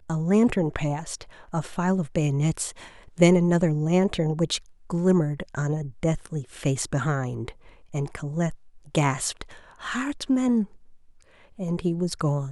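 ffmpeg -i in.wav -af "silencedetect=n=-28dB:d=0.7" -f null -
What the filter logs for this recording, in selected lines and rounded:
silence_start: 10.64
silence_end: 11.60 | silence_duration: 0.96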